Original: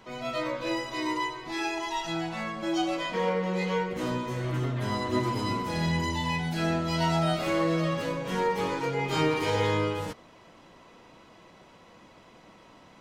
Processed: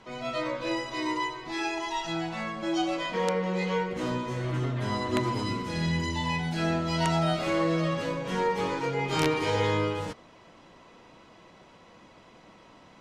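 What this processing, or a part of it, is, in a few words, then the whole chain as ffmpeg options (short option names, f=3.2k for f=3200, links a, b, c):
overflowing digital effects unit: -filter_complex "[0:a]asettb=1/sr,asplit=3[a][b][c];[a]atrim=end=5.434[d];[b]atrim=start=5.43:end=6.16,asetpts=PTS-STARTPTS,afade=t=in:d=0.004:c=qsin,afade=t=out:st=0.726:d=0.004:c=qsin,equalizer=f=790:t=o:w=0.95:g=-7[e];[c]atrim=start=6.156[f];[d][e]acrossfade=d=0.004:c1=hsin:c2=qsin[g];[g][f]acrossfade=d=0.004:c1=qsin:c2=hsin,aeval=exprs='(mod(5.96*val(0)+1,2)-1)/5.96':c=same,lowpass=9.1k"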